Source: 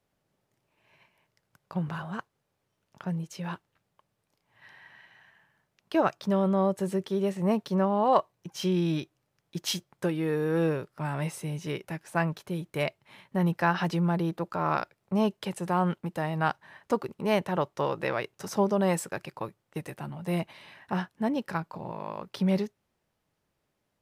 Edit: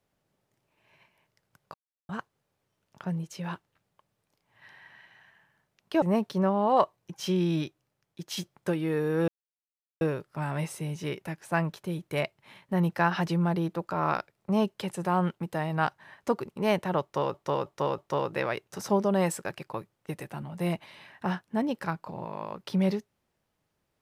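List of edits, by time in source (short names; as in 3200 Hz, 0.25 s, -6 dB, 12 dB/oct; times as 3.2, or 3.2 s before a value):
1.74–2.09 mute
6.02–7.38 cut
8.95–9.73 fade out, to -7 dB
10.64 insert silence 0.73 s
17.65–17.97 loop, 4 plays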